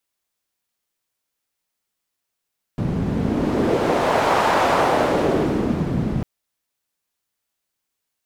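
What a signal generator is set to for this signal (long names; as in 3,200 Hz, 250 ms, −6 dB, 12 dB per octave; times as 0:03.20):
wind from filtered noise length 3.45 s, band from 160 Hz, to 820 Hz, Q 1.4, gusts 1, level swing 4.5 dB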